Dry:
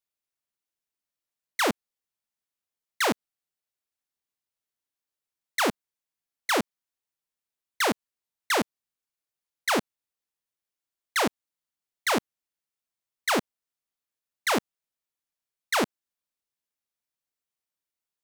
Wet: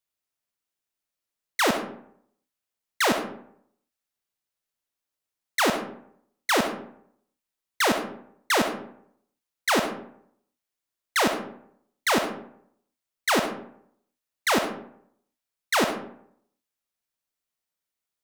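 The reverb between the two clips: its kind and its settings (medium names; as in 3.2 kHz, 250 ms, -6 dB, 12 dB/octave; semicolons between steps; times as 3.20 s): algorithmic reverb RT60 0.67 s, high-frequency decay 0.55×, pre-delay 25 ms, DRR 6 dB; trim +2 dB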